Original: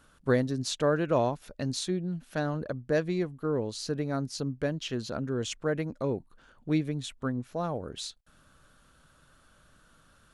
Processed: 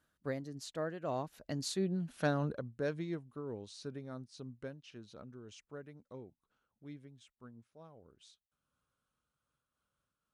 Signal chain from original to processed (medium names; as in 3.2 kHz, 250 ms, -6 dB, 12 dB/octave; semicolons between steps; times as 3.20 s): Doppler pass-by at 2.12 s, 23 m/s, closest 9 m; high-pass 53 Hz; random flutter of the level, depth 65%; trim +2 dB